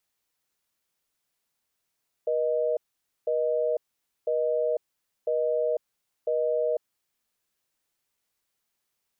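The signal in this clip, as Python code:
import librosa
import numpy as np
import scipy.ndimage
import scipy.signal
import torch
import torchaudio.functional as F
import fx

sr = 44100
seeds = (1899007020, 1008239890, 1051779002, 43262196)

y = fx.call_progress(sr, length_s=4.7, kind='busy tone', level_db=-25.5)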